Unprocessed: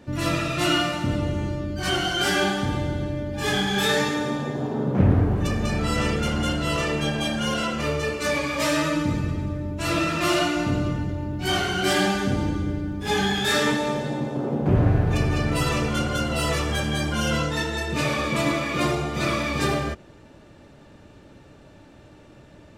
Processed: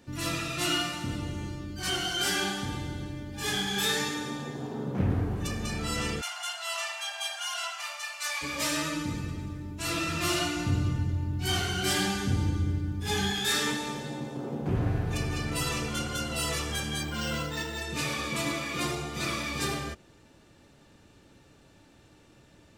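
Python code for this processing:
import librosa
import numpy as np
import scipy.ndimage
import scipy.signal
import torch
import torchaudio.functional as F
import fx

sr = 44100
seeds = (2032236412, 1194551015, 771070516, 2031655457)

y = fx.brickwall_highpass(x, sr, low_hz=590.0, at=(6.2, 8.41), fade=0.02)
y = fx.peak_eq(y, sr, hz=92.0, db=11.0, octaves=1.2, at=(10.08, 13.31))
y = fx.resample_linear(y, sr, factor=4, at=(17.02, 17.82))
y = fx.high_shelf(y, sr, hz=3300.0, db=10.5)
y = fx.notch(y, sr, hz=600.0, q=12.0)
y = y * librosa.db_to_amplitude(-9.0)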